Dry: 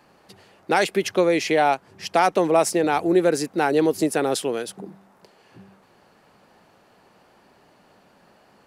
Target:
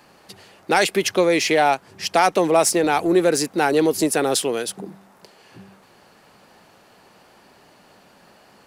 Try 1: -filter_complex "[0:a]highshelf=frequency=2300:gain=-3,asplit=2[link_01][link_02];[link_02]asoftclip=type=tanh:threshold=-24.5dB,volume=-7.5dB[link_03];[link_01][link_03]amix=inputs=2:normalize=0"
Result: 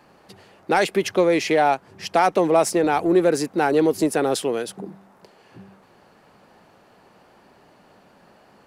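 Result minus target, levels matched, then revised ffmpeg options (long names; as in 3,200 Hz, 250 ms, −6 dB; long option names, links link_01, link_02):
4,000 Hz band −5.0 dB
-filter_complex "[0:a]highshelf=frequency=2300:gain=6,asplit=2[link_01][link_02];[link_02]asoftclip=type=tanh:threshold=-24.5dB,volume=-7.5dB[link_03];[link_01][link_03]amix=inputs=2:normalize=0"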